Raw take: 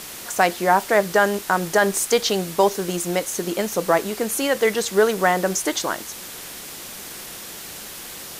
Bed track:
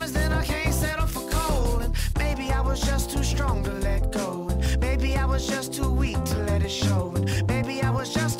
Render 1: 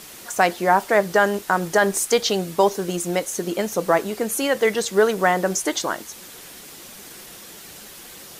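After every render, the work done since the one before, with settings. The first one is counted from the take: noise reduction 6 dB, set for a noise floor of -36 dBFS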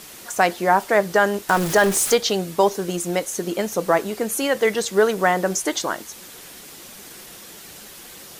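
1.49–2.15 s: jump at every zero crossing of -22.5 dBFS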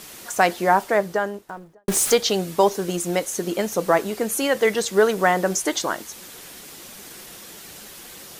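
0.60–1.88 s: studio fade out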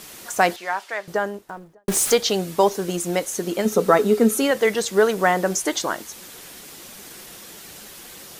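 0.56–1.08 s: band-pass filter 3.1 kHz, Q 0.77; 3.65–4.51 s: small resonant body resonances 230/420/1300/3700 Hz, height 14 dB, ringing for 85 ms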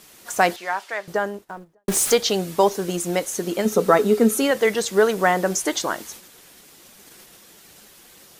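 gate -39 dBFS, range -8 dB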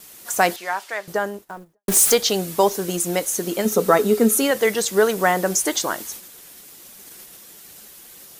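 gate with hold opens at -41 dBFS; treble shelf 8.3 kHz +10.5 dB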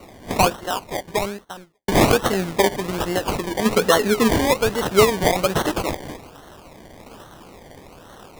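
phaser 0.4 Hz, delay 4.7 ms, feedback 28%; decimation with a swept rate 26×, swing 60% 1.2 Hz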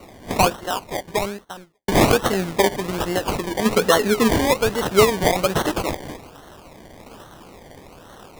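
no audible change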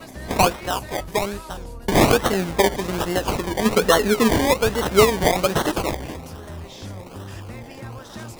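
add bed track -12.5 dB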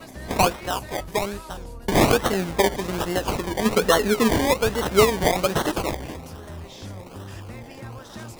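trim -2 dB

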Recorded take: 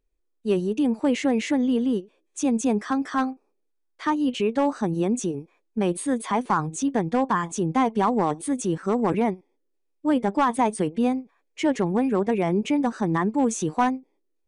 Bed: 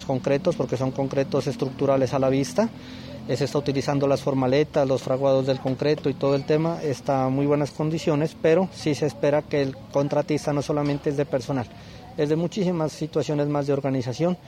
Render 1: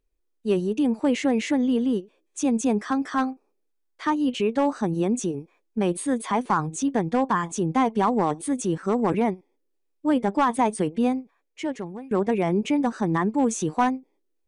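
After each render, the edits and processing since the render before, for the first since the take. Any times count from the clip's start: 11.10–12.11 s: fade out, to -22.5 dB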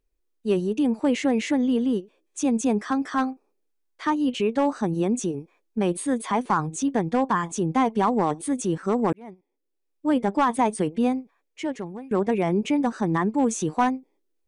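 9.13–10.15 s: fade in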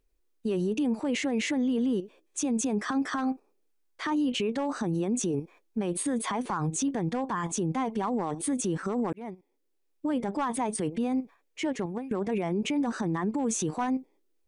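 in parallel at +1 dB: level held to a coarse grid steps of 17 dB; on the sum: peak limiter -21.5 dBFS, peak gain reduction 11.5 dB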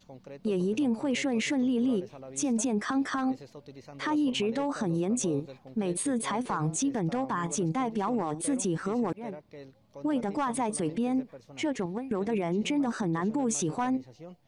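add bed -23.5 dB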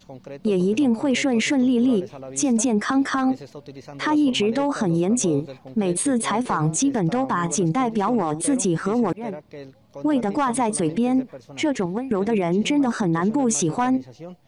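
trim +8 dB

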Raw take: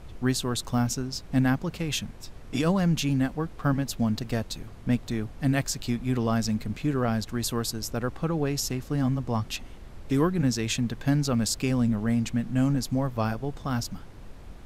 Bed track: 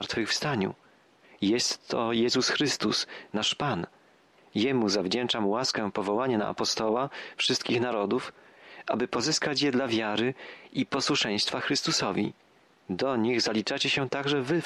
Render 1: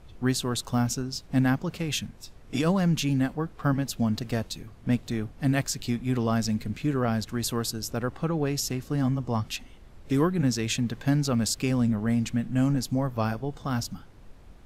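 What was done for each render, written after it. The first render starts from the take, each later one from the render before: noise print and reduce 6 dB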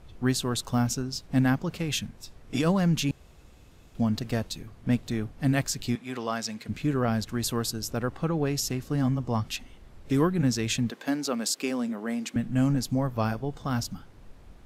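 3.11–3.95 s: room tone; 5.95–6.69 s: frequency weighting A; 10.90–12.36 s: high-pass 260 Hz 24 dB/octave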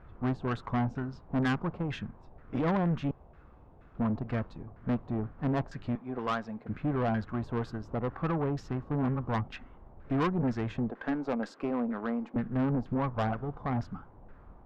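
LFO low-pass saw down 2.1 Hz 740–1600 Hz; valve stage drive 24 dB, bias 0.5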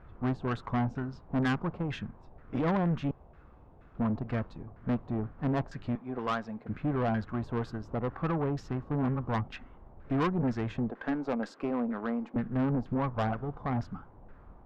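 no audible change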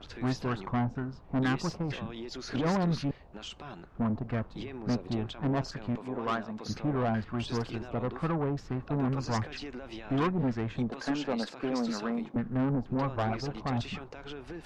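add bed track -16 dB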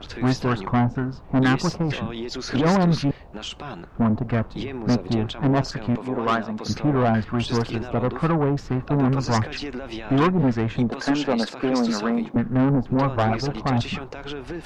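trim +9.5 dB

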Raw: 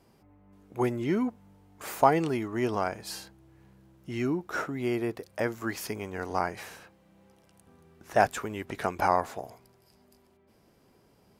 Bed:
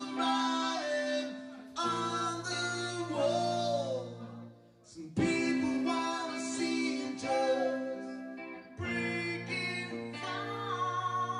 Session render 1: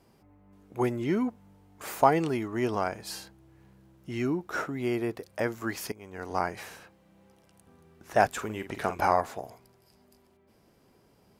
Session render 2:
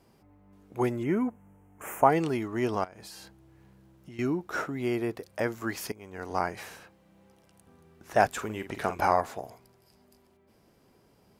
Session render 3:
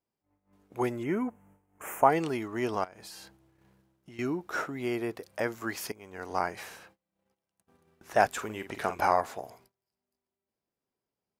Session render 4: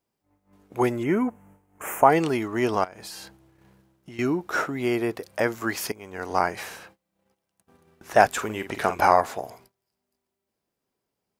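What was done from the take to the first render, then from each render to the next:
5.92–6.40 s: fade in, from -18 dB; 8.31–9.22 s: doubling 46 ms -10 dB
1.03–2.10 s: Butterworth band-stop 4.3 kHz, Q 0.98; 2.84–4.19 s: compression 10:1, threshold -42 dBFS
gate -56 dBFS, range -25 dB; bass shelf 290 Hz -6 dB
trim +7 dB; peak limiter -3 dBFS, peak gain reduction 2 dB

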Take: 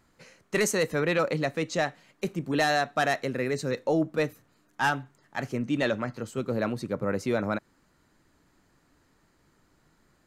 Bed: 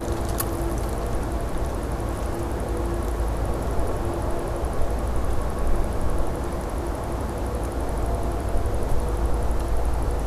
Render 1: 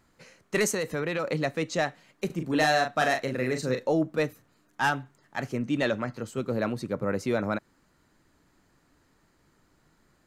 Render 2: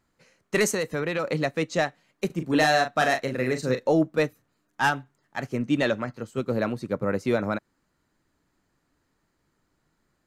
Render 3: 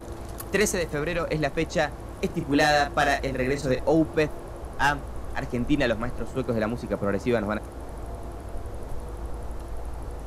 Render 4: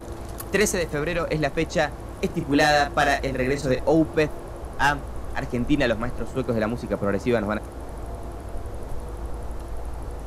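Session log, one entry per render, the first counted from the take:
0.74–1.32 s: compression 4:1, threshold -25 dBFS; 2.26–3.92 s: doubling 39 ms -6 dB
in parallel at -2 dB: peak limiter -18.5 dBFS, peak gain reduction 7 dB; on the sum: upward expansion 1.5:1, over -42 dBFS
add bed -11 dB
trim +2 dB

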